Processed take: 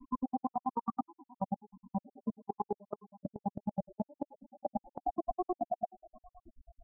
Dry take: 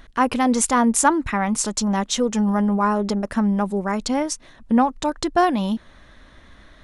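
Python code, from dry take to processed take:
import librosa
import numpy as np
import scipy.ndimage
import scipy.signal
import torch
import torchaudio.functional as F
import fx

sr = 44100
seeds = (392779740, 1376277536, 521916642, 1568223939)

y = fx.spec_blur(x, sr, span_ms=1390.0)
y = fx.rider(y, sr, range_db=5, speed_s=2.0)
y = fx.peak_eq(y, sr, hz=180.0, db=-12.0, octaves=2.0)
y = fx.comb_fb(y, sr, f0_hz=53.0, decay_s=1.1, harmonics='all', damping=0.0, mix_pct=50)
y = fx.room_flutter(y, sr, wall_m=6.2, rt60_s=0.47)
y = fx.transient(y, sr, attack_db=8, sustain_db=1)
y = fx.spec_topn(y, sr, count=4)
y = fx.high_shelf(y, sr, hz=2000.0, db=6.5)
y = fx.dispersion(y, sr, late='highs', ms=111.0, hz=2100.0)
y = fx.granulator(y, sr, seeds[0], grain_ms=58.0, per_s=9.3, spray_ms=100.0, spread_st=0)
y = fx.level_steps(y, sr, step_db=22)
y = F.gain(torch.from_numpy(y), 13.0).numpy()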